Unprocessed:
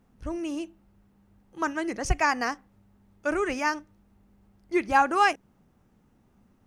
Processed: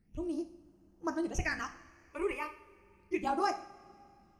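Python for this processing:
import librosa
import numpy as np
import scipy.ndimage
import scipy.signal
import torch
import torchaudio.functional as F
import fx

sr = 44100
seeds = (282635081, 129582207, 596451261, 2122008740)

y = fx.stretch_grains(x, sr, factor=0.66, grain_ms=37.0)
y = fx.phaser_stages(y, sr, stages=8, low_hz=200.0, high_hz=4000.0, hz=0.33, feedback_pct=45)
y = fx.rev_double_slope(y, sr, seeds[0], early_s=0.55, late_s=2.9, knee_db=-18, drr_db=6.5)
y = y * 10.0 ** (-5.5 / 20.0)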